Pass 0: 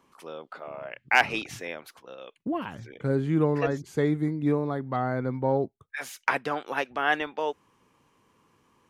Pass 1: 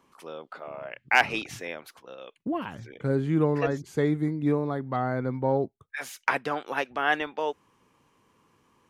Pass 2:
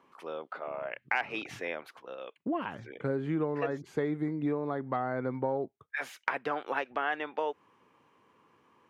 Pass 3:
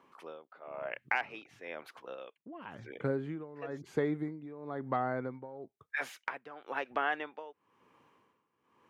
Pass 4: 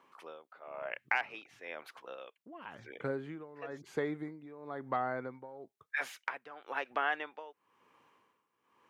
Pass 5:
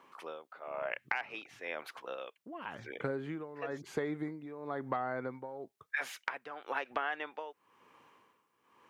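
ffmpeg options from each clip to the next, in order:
-af anull
-af "highpass=77,bass=f=250:g=-7,treble=f=4000:g=-13,acompressor=threshold=0.0355:ratio=5,volume=1.19"
-af "tremolo=f=1:d=0.85"
-af "lowshelf=f=420:g=-8.5,volume=1.12"
-af "acompressor=threshold=0.0158:ratio=4,volume=1.68"

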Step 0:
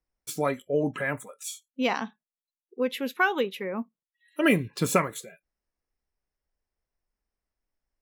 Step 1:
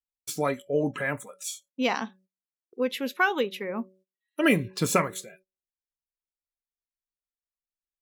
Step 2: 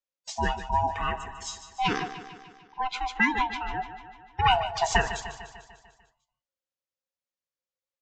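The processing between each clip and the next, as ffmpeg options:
-af "bandreject=f=188.1:t=h:w=4,bandreject=f=376.2:t=h:w=4,bandreject=f=564.3:t=h:w=4,agate=range=0.0794:threshold=0.00158:ratio=16:detection=peak,equalizer=f=5400:t=o:w=1:g=3.5"
-af "afftfilt=real='real(if(lt(b,1008),b+24*(1-2*mod(floor(b/24),2)),b),0)':imag='imag(if(lt(b,1008),b+24*(1-2*mod(floor(b/24),2)),b),0)':win_size=2048:overlap=0.75,aecho=1:1:149|298|447|596|745|894|1043:0.251|0.148|0.0874|0.0516|0.0304|0.018|0.0106,aresample=16000,aresample=44100"

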